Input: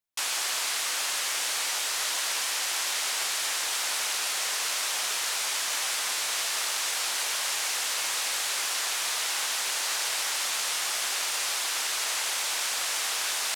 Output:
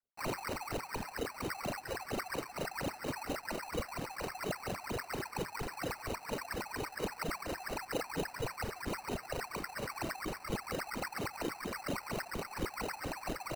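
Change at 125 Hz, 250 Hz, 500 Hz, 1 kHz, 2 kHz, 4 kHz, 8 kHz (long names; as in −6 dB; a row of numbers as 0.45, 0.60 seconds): can't be measured, +15.0 dB, +4.0 dB, −5.0 dB, −11.0 dB, −20.0 dB, −22.5 dB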